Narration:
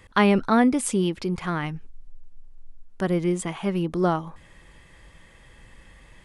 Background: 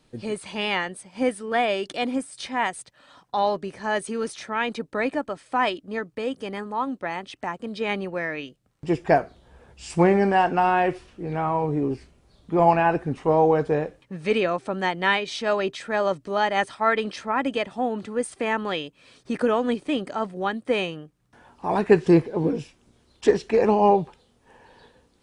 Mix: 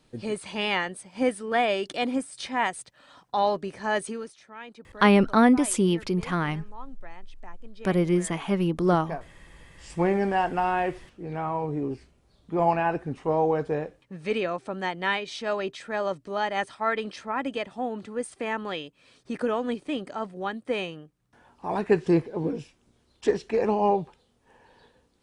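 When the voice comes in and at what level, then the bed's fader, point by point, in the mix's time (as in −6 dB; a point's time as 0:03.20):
4.85 s, +0.5 dB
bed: 0:04.07 −1 dB
0:04.36 −16.5 dB
0:09.44 −16.5 dB
0:10.11 −5 dB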